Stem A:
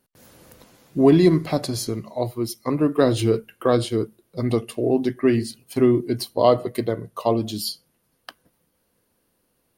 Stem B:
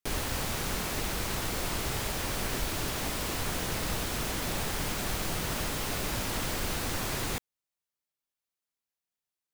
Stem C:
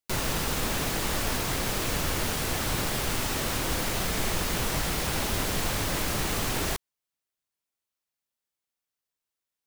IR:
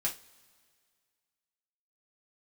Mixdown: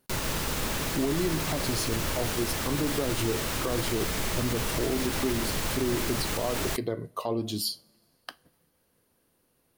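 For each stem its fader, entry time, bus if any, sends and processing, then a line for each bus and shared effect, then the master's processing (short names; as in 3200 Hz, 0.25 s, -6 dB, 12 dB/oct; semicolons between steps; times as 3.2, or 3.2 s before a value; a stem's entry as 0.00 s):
-2.5 dB, 0.00 s, send -15 dB, compressor 4:1, threshold -23 dBFS, peak gain reduction 11.5 dB
off
-1.5 dB, 0.00 s, no send, notch 730 Hz, Q 16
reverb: on, pre-delay 3 ms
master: limiter -18 dBFS, peak gain reduction 7 dB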